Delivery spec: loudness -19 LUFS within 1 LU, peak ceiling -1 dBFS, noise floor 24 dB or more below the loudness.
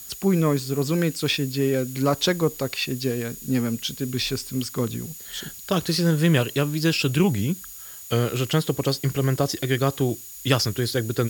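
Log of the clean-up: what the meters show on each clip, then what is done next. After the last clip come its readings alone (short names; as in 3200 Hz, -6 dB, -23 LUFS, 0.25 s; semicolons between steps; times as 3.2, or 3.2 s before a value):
steady tone 6800 Hz; tone level -44 dBFS; noise floor -40 dBFS; noise floor target -48 dBFS; loudness -24.0 LUFS; peak -4.0 dBFS; loudness target -19.0 LUFS
-> notch 6800 Hz, Q 30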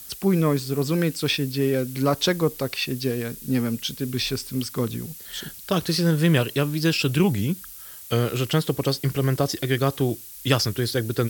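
steady tone none; noise floor -41 dBFS; noise floor target -48 dBFS
-> denoiser 7 dB, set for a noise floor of -41 dBFS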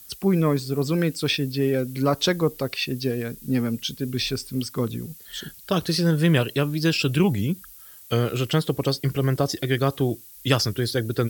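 noise floor -46 dBFS; noise floor target -48 dBFS
-> denoiser 6 dB, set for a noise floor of -46 dBFS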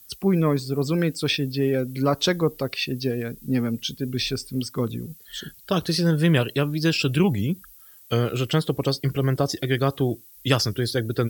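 noise floor -49 dBFS; loudness -24.0 LUFS; peak -4.0 dBFS; loudness target -19.0 LUFS
-> gain +5 dB; limiter -1 dBFS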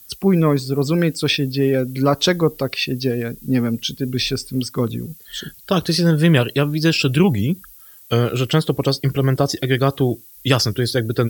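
loudness -19.0 LUFS; peak -1.0 dBFS; noise floor -44 dBFS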